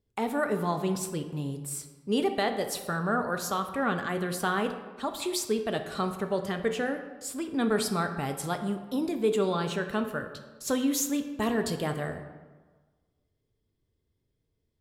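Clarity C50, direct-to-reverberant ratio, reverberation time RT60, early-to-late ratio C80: 9.0 dB, 6.0 dB, 1.4 s, 11.0 dB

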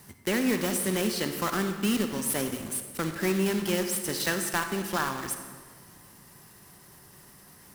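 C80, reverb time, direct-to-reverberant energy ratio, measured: 8.5 dB, 1.7 s, 6.5 dB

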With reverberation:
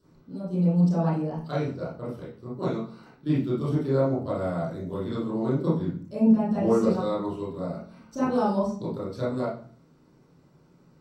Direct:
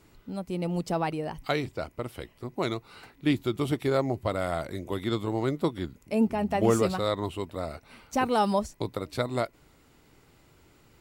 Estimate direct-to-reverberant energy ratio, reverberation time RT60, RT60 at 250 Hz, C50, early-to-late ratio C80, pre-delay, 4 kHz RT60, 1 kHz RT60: -11.0 dB, 0.45 s, 0.70 s, 2.0 dB, 9.0 dB, 23 ms, 0.40 s, 0.45 s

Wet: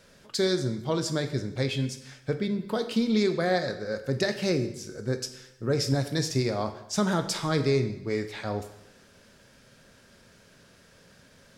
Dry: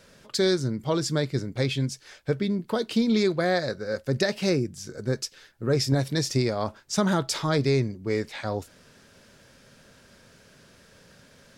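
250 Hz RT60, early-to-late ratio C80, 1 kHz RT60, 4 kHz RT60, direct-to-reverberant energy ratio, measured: 0.85 s, 13.0 dB, 0.80 s, 0.80 s, 8.0 dB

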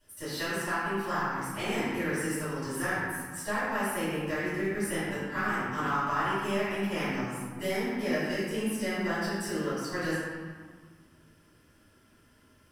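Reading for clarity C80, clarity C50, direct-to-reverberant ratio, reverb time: -1.0 dB, -3.5 dB, -15.0 dB, 1.7 s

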